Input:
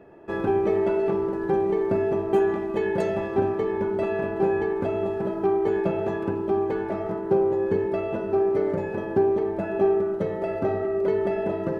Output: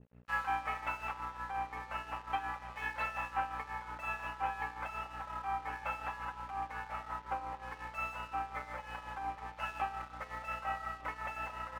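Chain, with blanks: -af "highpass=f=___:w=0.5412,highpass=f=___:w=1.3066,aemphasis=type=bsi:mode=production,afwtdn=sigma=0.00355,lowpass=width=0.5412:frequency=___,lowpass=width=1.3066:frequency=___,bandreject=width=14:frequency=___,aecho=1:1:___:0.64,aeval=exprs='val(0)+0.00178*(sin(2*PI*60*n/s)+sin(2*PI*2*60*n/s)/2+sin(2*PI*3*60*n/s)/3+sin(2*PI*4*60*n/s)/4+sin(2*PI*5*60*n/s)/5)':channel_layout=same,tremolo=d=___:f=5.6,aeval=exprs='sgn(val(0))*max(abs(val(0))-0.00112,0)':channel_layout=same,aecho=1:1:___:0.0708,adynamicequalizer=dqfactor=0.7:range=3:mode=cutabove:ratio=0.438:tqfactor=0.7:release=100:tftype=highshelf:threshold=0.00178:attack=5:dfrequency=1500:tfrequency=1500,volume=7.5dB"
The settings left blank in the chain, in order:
1100, 1100, 2700, 2700, 1600, 3.8, 0.61, 315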